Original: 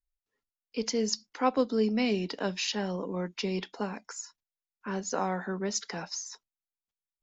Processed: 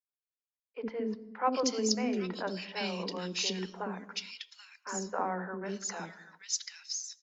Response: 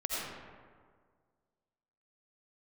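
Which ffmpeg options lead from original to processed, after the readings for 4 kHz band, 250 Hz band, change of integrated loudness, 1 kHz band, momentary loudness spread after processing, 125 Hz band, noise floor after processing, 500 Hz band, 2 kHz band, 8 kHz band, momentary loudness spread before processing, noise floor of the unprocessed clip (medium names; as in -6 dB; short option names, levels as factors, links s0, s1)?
0.0 dB, -4.5 dB, -3.0 dB, -1.0 dB, 14 LU, -5.0 dB, under -85 dBFS, -4.0 dB, -2.0 dB, no reading, 13 LU, under -85 dBFS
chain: -filter_complex "[0:a]lowshelf=f=210:g=-10.5,agate=range=0.0224:threshold=0.00501:ratio=3:detection=peak,acrossover=split=440|2100[s0][s1][s2];[s0]adelay=60[s3];[s2]adelay=780[s4];[s3][s1][s4]amix=inputs=3:normalize=0,asplit=2[s5][s6];[1:a]atrim=start_sample=2205,afade=t=out:st=0.37:d=0.01,atrim=end_sample=16758,lowshelf=f=450:g=10[s7];[s6][s7]afir=irnorm=-1:irlink=0,volume=0.0631[s8];[s5][s8]amix=inputs=2:normalize=0"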